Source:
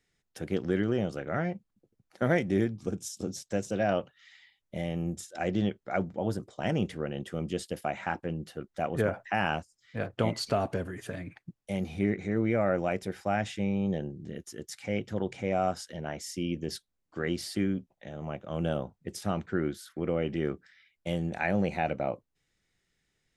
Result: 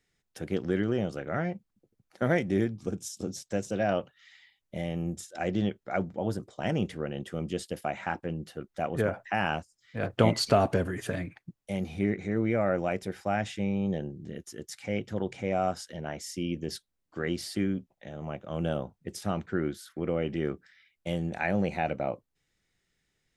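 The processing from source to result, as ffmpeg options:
-filter_complex "[0:a]asplit=3[s0][s1][s2];[s0]atrim=end=10.032[s3];[s1]atrim=start=10.028:end=11.262,asetpts=PTS-STARTPTS,volume=1.88[s4];[s2]atrim=start=11.258[s5];[s3][s4]acrossfade=d=0.004:c1=hsin:c2=hsin[s6];[s6][s5]acrossfade=d=0.004:c1=hsin:c2=hsin"

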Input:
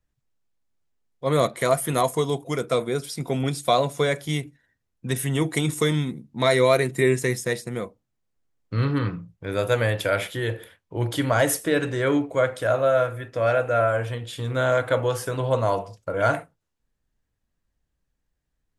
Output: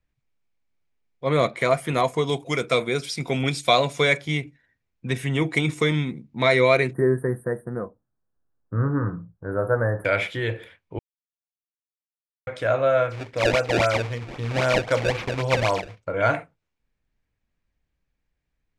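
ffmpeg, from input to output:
-filter_complex "[0:a]asettb=1/sr,asplit=3[s0][s1][s2];[s0]atrim=end=2.274[s3];[s1]atrim=start=2.27:end=4.18,asetpts=PTS-STARTPTS,afade=t=in:d=0.004:c=qsin,afade=t=out:st=1.906:d=0.004:c=qsin,highshelf=f=2600:g=9.5[s4];[s2]atrim=start=4.176[s5];[s3][s4]acrossfade=d=0.004:c1=hsin:c2=qsin[s6];[s6][s5]acrossfade=d=0.004:c1=qsin:c2=hsin,asettb=1/sr,asplit=3[s7][s8][s9];[s7]atrim=end=6.934[s10];[s8]atrim=start=6.93:end=10.05,asetpts=PTS-STARTPTS,afade=t=in:d=0.004:c=qsin,afade=t=out:st=3.116:d=0.004:c=qsin,asuperstop=centerf=4100:order=20:qfactor=0.56[s11];[s9]atrim=start=10.046[s12];[s10][s11]acrossfade=d=0.004:c1=hsin:c2=qsin[s13];[s13][s12]acrossfade=d=0.004:c1=qsin:c2=hsin,asplit=3[s14][s15][s16];[s14]afade=t=out:st=13.09:d=0.02[s17];[s15]acrusher=samples=24:mix=1:aa=0.000001:lfo=1:lforange=38.4:lforate=3.8,afade=t=in:st=13.09:d=0.02,afade=t=out:st=16.01:d=0.02[s18];[s16]afade=t=in:st=16.01:d=0.02[s19];[s17][s18][s19]amix=inputs=3:normalize=0,asplit=3[s20][s21][s22];[s20]atrim=end=10.99,asetpts=PTS-STARTPTS,afade=t=out:st=10.986:d=0.004:c=hsin[s23];[s21]atrim=start=10.99:end=12.47,asetpts=PTS-STARTPTS,volume=0[s24];[s22]atrim=start=12.47,asetpts=PTS-STARTPTS,afade=t=in:d=0.004:c=hsin[s25];[s23][s24][s25]concat=n=3:v=0:a=1,lowpass=5300,equalizer=f=2300:w=4.6:g=8.5"

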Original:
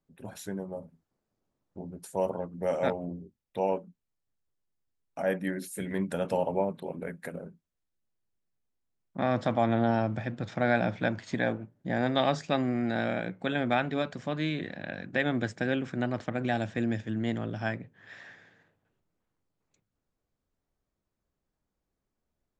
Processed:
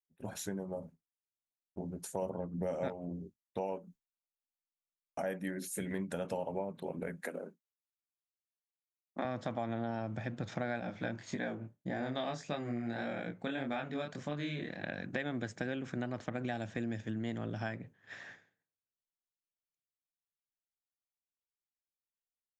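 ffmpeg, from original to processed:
-filter_complex "[0:a]asettb=1/sr,asplit=3[s0][s1][s2];[s0]atrim=end=2.224[s3];[s1]atrim=start=2.22:end=2.88,asetpts=PTS-STARTPTS,afade=t=in:d=0.004:c=qsin,afade=t=out:st=0.656:d=0.004:c=qsin,lowshelf=f=430:g=8[s4];[s2]atrim=start=2.876[s5];[s3][s4]acrossfade=d=0.004:c1=hsin:c2=qsin[s6];[s6][s5]acrossfade=d=0.004:c1=qsin:c2=hsin,asettb=1/sr,asplit=3[s7][s8][s9];[s7]atrim=end=3.634[s10];[s8]atrim=start=3.63:end=5.53,asetpts=PTS-STARTPTS,afade=t=in:d=0.004:c=qsin,afade=t=out:st=1.896:d=0.004:c=qsin,highshelf=f=8200:g=6.5[s11];[s9]atrim=start=5.526[s12];[s10][s11]acrossfade=d=0.004:c1=hsin:c2=qsin[s13];[s13][s12]acrossfade=d=0.004:c1=qsin:c2=hsin,asettb=1/sr,asplit=3[s14][s15][s16];[s14]atrim=end=7.214[s17];[s15]atrim=start=7.21:end=9.25,asetpts=PTS-STARTPTS,afade=t=in:d=0.004:c=qsin,afade=t=out:st=2.036:d=0.004:c=qsin,highpass=f=240:w=0.5412,highpass=f=240:w=1.3066[s18];[s16]atrim=start=9.246[s19];[s17][s18]acrossfade=d=0.004:c1=hsin:c2=qsin[s20];[s20][s19]acrossfade=d=0.004:c1=qsin:c2=hsin,asettb=1/sr,asplit=3[s21][s22][s23];[s21]atrim=end=10.804[s24];[s22]atrim=start=10.8:end=14.84,asetpts=PTS-STARTPTS,afade=t=in:d=0.004:c=qsin,afade=t=out:st=4.036:d=0.004:c=qsin,flanger=delay=20:depth=6.3:speed=1.7[s25];[s23]atrim=start=14.836[s26];[s24][s25]acrossfade=d=0.004:c1=hsin:c2=qsin[s27];[s27][s26]acrossfade=d=0.004:c1=qsin:c2=hsin,agate=range=0.0224:threshold=0.00501:ratio=3:detection=peak,equalizer=f=6500:t=o:w=0.25:g=5.5,acompressor=threshold=0.0158:ratio=4,volume=1.12"

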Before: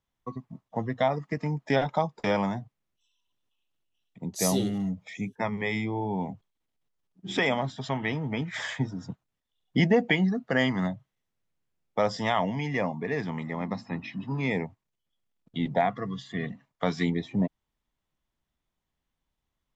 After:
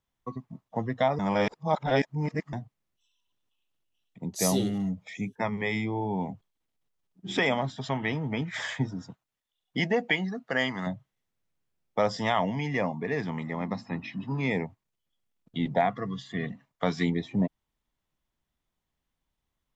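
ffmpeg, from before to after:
-filter_complex "[0:a]asettb=1/sr,asplit=3[s0][s1][s2];[s0]atrim=end=9.024[s3];[s1]atrim=start=9.02:end=10.87,asetpts=PTS-STARTPTS,afade=t=in:d=0.004:c=qsin,afade=t=out:st=1.846:d=0.004:c=qsin,lowshelf=f=390:g=-9.5[s4];[s2]atrim=start=10.866[s5];[s3][s4]acrossfade=d=0.004:c1=hsin:c2=qsin[s6];[s6][s5]acrossfade=d=0.004:c1=qsin:c2=hsin,asplit=3[s7][s8][s9];[s7]atrim=end=1.192[s10];[s8]atrim=start=1.188:end=2.532,asetpts=PTS-STARTPTS,areverse[s11];[s9]atrim=start=2.528[s12];[s10][s11]acrossfade=d=0.004:c1=hsin:c2=hsin[s13];[s13][s12]acrossfade=d=0.004:c1=hsin:c2=hsin"

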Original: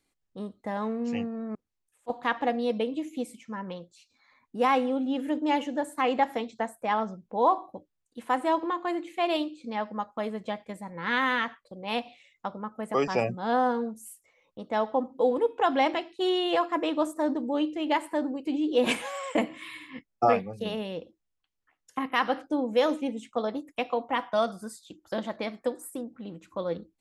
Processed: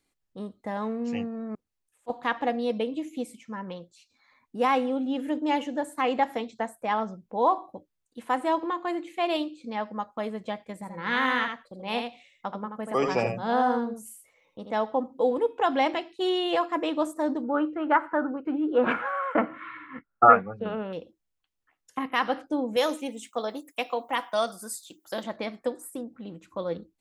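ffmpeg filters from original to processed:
-filter_complex "[0:a]asettb=1/sr,asplit=3[s0][s1][s2];[s0]atrim=end=10.734[s3];[s1]atrim=start=10.73:end=14.77,asetpts=PTS-STARTPTS,afade=t=in:d=0.004:c=qsin,afade=t=out:st=4.036:d=0.004:c=qsin,aecho=1:1:80:0.531,atrim=end_sample=178164[s4];[s2]atrim=start=14.766[s5];[s3][s4]acrossfade=d=0.004:c1=hsin:c2=qsin[s6];[s6][s5]acrossfade=d=0.004:c1=qsin:c2=hsin,asettb=1/sr,asplit=3[s7][s8][s9];[s7]atrim=end=17.444[s10];[s8]atrim=start=17.44:end=20.93,asetpts=PTS-STARTPTS,afade=t=in:d=0.004:c=qsin,afade=t=out:st=3.486:d=0.004:c=qsin,lowpass=f=1400:t=q:w=12[s11];[s9]atrim=start=20.926[s12];[s10][s11]acrossfade=d=0.004:c1=hsin:c2=qsin[s13];[s13][s12]acrossfade=d=0.004:c1=qsin:c2=hsin,asettb=1/sr,asplit=3[s14][s15][s16];[s14]atrim=end=22.764[s17];[s15]atrim=start=22.76:end=25.24,asetpts=PTS-STARTPTS,afade=t=in:d=0.004:c=qsin,afade=t=out:st=2.476:d=0.004:c=qsin,aemphasis=mode=production:type=bsi[s18];[s16]atrim=start=25.236[s19];[s17][s18]acrossfade=d=0.004:c1=hsin:c2=qsin[s20];[s20][s19]acrossfade=d=0.004:c1=qsin:c2=hsin"

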